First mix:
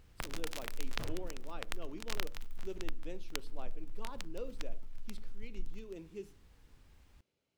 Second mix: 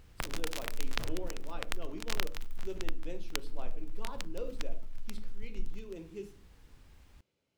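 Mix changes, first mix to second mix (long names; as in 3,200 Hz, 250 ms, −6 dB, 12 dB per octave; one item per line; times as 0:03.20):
speech: send +9.5 dB
first sound +4.0 dB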